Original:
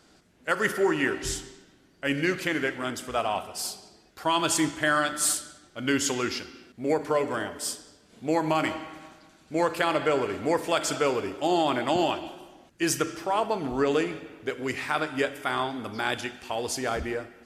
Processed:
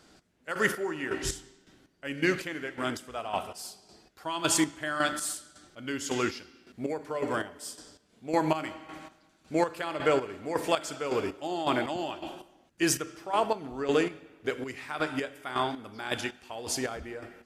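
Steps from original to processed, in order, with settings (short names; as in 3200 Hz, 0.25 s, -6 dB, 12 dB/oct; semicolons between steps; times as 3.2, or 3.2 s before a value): chopper 1.8 Hz, depth 65%, duty 35%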